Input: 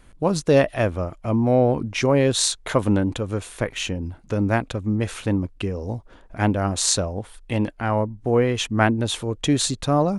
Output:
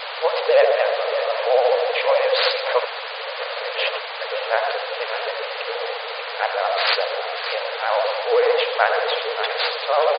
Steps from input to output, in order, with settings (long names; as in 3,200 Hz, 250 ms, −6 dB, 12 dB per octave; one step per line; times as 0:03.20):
repeating echo 586 ms, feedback 52%, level −9.5 dB
on a send at −4.5 dB: convolution reverb RT60 1.1 s, pre-delay 63 ms
0:02.84–0:04.21: on the sum: compressor whose output falls as the input rises −25 dBFS, ratio −0.5
background noise pink −29 dBFS
decimation without filtering 5×
brick-wall band-pass 450–4,800 Hz
pitch vibrato 14 Hz 92 cents
level +2.5 dB